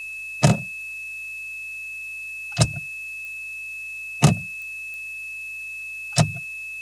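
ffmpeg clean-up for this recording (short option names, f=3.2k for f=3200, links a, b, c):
-af "adeclick=t=4,bandreject=f=53.2:t=h:w=4,bandreject=f=106.4:t=h:w=4,bandreject=f=159.6:t=h:w=4,bandreject=f=2.6k:w=30,afftdn=nr=30:nf=-34"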